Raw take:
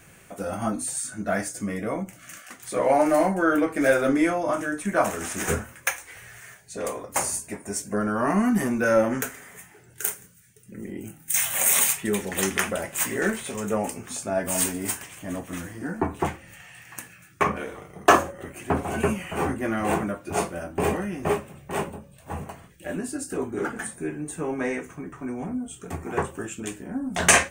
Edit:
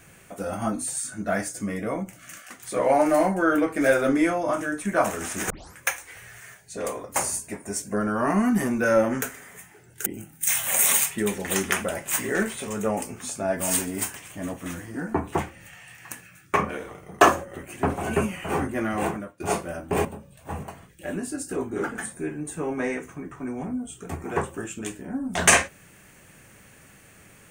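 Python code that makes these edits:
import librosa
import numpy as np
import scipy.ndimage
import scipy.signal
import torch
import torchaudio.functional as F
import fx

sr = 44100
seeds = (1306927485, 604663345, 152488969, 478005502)

y = fx.edit(x, sr, fx.tape_start(start_s=5.5, length_s=0.27),
    fx.cut(start_s=10.06, length_s=0.87),
    fx.fade_out_to(start_s=19.62, length_s=0.65, curve='qsin', floor_db=-19.0),
    fx.cut(start_s=20.92, length_s=0.94), tone=tone)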